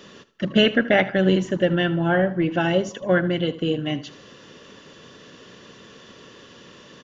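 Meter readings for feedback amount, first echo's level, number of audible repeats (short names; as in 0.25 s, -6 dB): 34%, -17.0 dB, 2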